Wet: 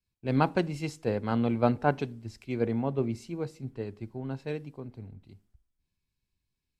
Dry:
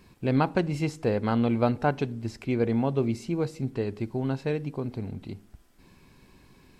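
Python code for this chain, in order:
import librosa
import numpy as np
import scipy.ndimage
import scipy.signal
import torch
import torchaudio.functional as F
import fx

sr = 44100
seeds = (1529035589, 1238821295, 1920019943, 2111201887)

y = fx.band_widen(x, sr, depth_pct=100)
y = y * librosa.db_to_amplitude(-4.0)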